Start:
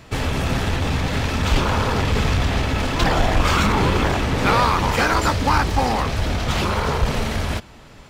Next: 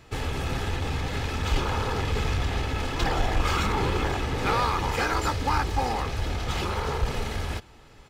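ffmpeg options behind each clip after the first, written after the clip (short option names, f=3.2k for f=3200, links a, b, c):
-af "aecho=1:1:2.4:0.34,volume=-8dB"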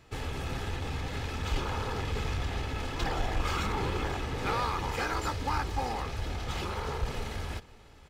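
-af "aecho=1:1:542:0.0841,volume=-6dB"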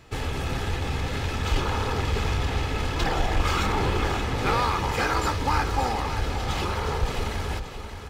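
-af "aecho=1:1:575|1150|1725|2300|2875:0.316|0.149|0.0699|0.0328|0.0154,volume=6.5dB"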